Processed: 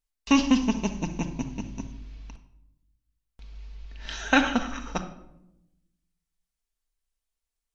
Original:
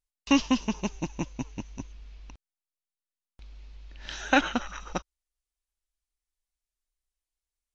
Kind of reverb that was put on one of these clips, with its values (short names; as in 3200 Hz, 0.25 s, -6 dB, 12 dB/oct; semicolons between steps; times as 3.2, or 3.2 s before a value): shoebox room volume 2600 m³, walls furnished, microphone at 1.6 m; gain +1 dB